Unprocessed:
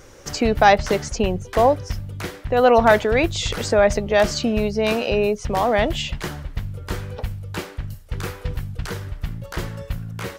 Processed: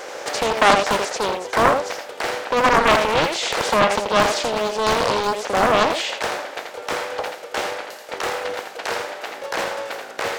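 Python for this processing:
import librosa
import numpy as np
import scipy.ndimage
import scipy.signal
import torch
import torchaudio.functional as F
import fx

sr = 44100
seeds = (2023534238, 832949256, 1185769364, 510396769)

p1 = fx.bin_compress(x, sr, power=0.6)
p2 = scipy.signal.sosfilt(scipy.signal.butter(4, 410.0, 'highpass', fs=sr, output='sos'), p1)
p3 = p2 + fx.echo_single(p2, sr, ms=83, db=-6.0, dry=0)
p4 = fx.doppler_dist(p3, sr, depth_ms=0.76)
y = p4 * 10.0 ** (-2.0 / 20.0)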